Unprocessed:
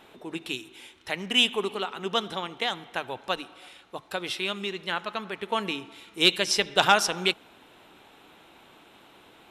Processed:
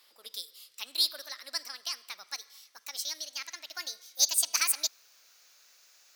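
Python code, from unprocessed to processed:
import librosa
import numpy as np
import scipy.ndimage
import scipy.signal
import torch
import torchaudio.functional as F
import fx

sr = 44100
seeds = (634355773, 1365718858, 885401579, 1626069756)

y = fx.speed_glide(x, sr, from_pct=134, to_pct=175)
y = scipy.signal.lfilter([1.0, -0.97], [1.0], y)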